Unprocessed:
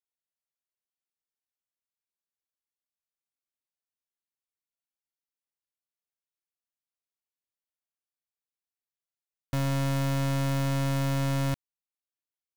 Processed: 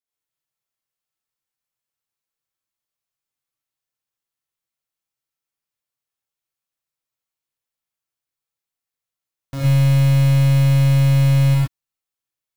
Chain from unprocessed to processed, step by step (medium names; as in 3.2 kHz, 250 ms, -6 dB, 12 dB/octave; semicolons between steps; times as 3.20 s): gated-style reverb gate 140 ms rising, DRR -7.5 dB; trim -1.5 dB